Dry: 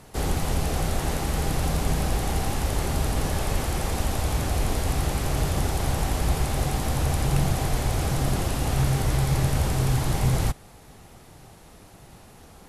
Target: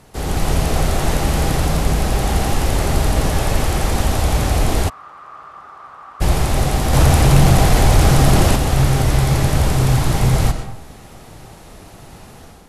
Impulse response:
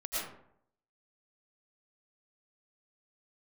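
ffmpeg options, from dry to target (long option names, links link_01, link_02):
-filter_complex "[0:a]asplit=2[link_01][link_02];[1:a]atrim=start_sample=2205,lowpass=8900[link_03];[link_02][link_03]afir=irnorm=-1:irlink=0,volume=-10dB[link_04];[link_01][link_04]amix=inputs=2:normalize=0,dynaudnorm=framelen=130:gausssize=5:maxgain=7dB,asplit=3[link_05][link_06][link_07];[link_05]afade=type=out:start_time=4.88:duration=0.02[link_08];[link_06]bandpass=frequency=1200:width_type=q:width=11:csg=0,afade=type=in:start_time=4.88:duration=0.02,afade=type=out:start_time=6.2:duration=0.02[link_09];[link_07]afade=type=in:start_time=6.2:duration=0.02[link_10];[link_08][link_09][link_10]amix=inputs=3:normalize=0,asettb=1/sr,asplit=3[link_11][link_12][link_13];[link_11]atrim=end=6.934[link_14];[link_12]atrim=start=6.93:end=8.56,asetpts=PTS-STARTPTS,afade=type=in:duration=0.004:curve=qsin,afade=type=out:start_time=1.626:duration=0.004:curve=qsin,acontrast=33[link_15];[link_13]atrim=start=8.556[link_16];[link_14][link_15]acrossfade=duration=0.004:curve1=hsin:curve2=qsin[link_17];[link_17][link_16]acrossfade=duration=0.004:curve1=qsin:curve2=hsin"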